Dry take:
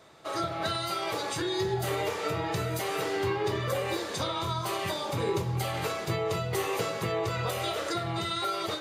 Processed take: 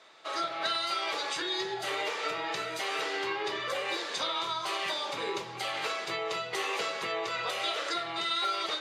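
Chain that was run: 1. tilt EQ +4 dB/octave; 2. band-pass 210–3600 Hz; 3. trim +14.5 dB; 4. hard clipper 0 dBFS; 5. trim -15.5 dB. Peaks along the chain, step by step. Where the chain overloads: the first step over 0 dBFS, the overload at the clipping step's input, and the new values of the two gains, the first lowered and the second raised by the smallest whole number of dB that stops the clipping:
-12.0 dBFS, -17.5 dBFS, -3.0 dBFS, -3.0 dBFS, -18.5 dBFS; nothing clips

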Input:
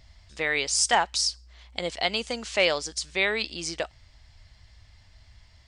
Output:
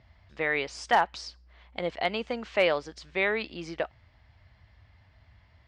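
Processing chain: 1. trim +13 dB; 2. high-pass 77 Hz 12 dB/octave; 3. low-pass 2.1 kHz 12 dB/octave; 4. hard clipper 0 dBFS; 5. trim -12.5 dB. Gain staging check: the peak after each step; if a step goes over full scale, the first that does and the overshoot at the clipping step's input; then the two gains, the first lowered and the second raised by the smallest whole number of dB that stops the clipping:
+3.5 dBFS, +4.0 dBFS, +3.0 dBFS, 0.0 dBFS, -12.5 dBFS; step 1, 3.0 dB; step 1 +10 dB, step 5 -9.5 dB

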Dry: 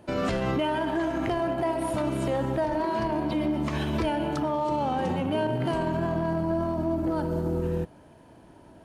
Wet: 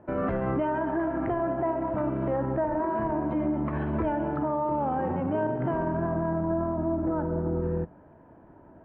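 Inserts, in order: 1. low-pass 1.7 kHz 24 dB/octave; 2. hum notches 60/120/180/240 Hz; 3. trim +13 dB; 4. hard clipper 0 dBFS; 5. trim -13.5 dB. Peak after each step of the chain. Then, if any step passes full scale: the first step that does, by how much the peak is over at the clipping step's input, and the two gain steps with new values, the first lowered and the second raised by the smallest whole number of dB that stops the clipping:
-18.5 dBFS, -17.5 dBFS, -4.5 dBFS, -4.5 dBFS, -18.0 dBFS; nothing clips

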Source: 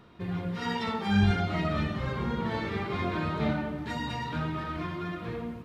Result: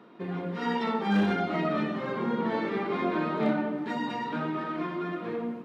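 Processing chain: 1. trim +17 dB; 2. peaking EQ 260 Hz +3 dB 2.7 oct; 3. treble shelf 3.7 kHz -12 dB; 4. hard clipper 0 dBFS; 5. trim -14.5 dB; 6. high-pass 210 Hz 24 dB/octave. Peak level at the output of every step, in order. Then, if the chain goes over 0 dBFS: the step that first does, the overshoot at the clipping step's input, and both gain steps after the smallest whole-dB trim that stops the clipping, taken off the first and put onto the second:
+4.5 dBFS, +6.0 dBFS, +6.0 dBFS, 0.0 dBFS, -14.5 dBFS, -14.5 dBFS; step 1, 6.0 dB; step 1 +11 dB, step 5 -8.5 dB

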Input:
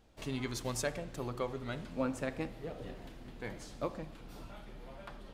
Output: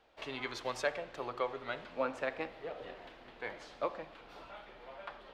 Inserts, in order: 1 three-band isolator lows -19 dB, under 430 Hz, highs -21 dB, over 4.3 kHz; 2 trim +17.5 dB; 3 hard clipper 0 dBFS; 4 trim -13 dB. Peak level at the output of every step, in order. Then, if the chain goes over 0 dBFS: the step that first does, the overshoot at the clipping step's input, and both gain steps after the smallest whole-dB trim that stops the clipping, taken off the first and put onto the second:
-22.5 dBFS, -5.0 dBFS, -5.0 dBFS, -18.0 dBFS; nothing clips

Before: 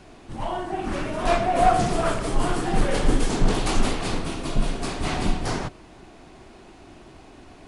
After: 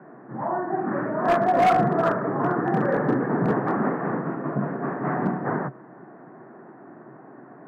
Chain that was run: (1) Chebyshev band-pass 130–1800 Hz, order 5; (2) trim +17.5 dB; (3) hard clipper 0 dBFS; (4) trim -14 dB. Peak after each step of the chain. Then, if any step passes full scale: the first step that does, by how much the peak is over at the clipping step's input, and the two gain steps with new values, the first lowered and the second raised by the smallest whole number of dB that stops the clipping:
-9.0 dBFS, +8.5 dBFS, 0.0 dBFS, -14.0 dBFS; step 2, 8.5 dB; step 2 +8.5 dB, step 4 -5 dB

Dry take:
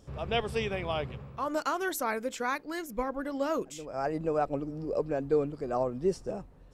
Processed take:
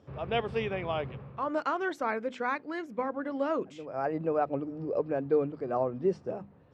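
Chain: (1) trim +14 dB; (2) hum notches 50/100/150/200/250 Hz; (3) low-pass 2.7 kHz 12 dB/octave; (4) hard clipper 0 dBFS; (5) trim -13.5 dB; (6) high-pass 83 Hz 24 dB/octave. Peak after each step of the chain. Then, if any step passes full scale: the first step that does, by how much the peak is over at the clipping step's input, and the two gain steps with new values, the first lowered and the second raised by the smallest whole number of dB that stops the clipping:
-1.0 dBFS, -1.0 dBFS, -2.0 dBFS, -2.0 dBFS, -15.5 dBFS, -16.0 dBFS; nothing clips

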